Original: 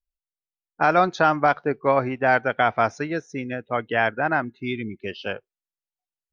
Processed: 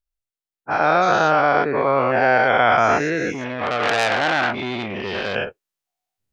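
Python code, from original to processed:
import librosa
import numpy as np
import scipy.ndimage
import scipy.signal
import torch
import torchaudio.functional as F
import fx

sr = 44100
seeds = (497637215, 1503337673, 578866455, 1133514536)

y = fx.spec_dilate(x, sr, span_ms=240)
y = fx.rider(y, sr, range_db=4, speed_s=2.0)
y = fx.transformer_sat(y, sr, knee_hz=3800.0, at=(3.32, 5.35))
y = F.gain(torch.from_numpy(y), -1.0).numpy()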